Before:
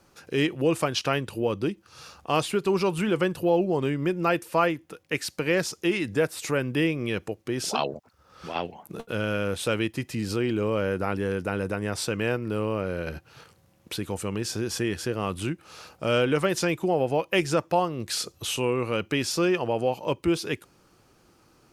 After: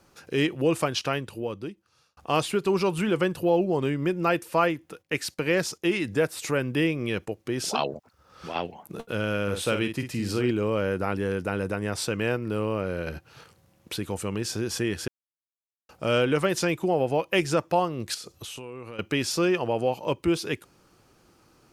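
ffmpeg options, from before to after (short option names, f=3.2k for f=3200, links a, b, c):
-filter_complex "[0:a]asplit=3[a][b][c];[a]afade=t=out:st=5.01:d=0.02[d];[b]agate=range=-11dB:threshold=-50dB:ratio=16:release=100:detection=peak,afade=t=in:st=5.01:d=0.02,afade=t=out:st=7.38:d=0.02[e];[c]afade=t=in:st=7.38:d=0.02[f];[d][e][f]amix=inputs=3:normalize=0,asettb=1/sr,asplit=3[g][h][i];[g]atrim=end=9.434[j];[h]atrim=start=9.43:end=10.51,asetpts=PTS-STARTPTS,afade=t=in:d=0.004:c=qsin,afade=t=out:st=1.076:d=0.004:c=qsin,asplit=2[k][l];[l]adelay=49,volume=-7.5dB[m];[k][m]amix=inputs=2:normalize=0,atrim=end_sample=47628[n];[i]atrim=start=10.506[o];[j][n]acrossfade=d=0.004:c1=hsin:c2=qsin[p];[p][o]acrossfade=d=0.004:c1=qsin:c2=hsin,asettb=1/sr,asplit=3[q][r][s];[q]atrim=end=18.144[t];[r]atrim=start=18.14:end=18.99,asetpts=PTS-STARTPTS,afade=t=in:d=0.004:c=qsin,afade=t=out:st=0.846:d=0.004:c=qsin,acompressor=threshold=-35dB:ratio=12:attack=3.2:release=140:knee=1:detection=peak[u];[s]atrim=start=18.986[v];[t][u]acrossfade=d=0.004:c1=hsin:c2=qsin[w];[w][v]acrossfade=d=0.004:c1=qsin:c2=hsin,asplit=4[x][y][z][aa];[x]atrim=end=2.17,asetpts=PTS-STARTPTS,afade=t=out:st=0.83:d=1.34[ab];[y]atrim=start=2.17:end=15.08,asetpts=PTS-STARTPTS,afade=t=in:d=0.004:c=hsin,afade=t=out:st=12.906:d=0.004:c=hsin[ac];[z]atrim=start=15.08:end=15.89,asetpts=PTS-STARTPTS,volume=0[ad];[aa]atrim=start=15.89,asetpts=PTS-STARTPTS,afade=t=in:d=0.004:c=hsin[ae];[ab][ac][ad][ae]concat=n=4:v=0:a=1"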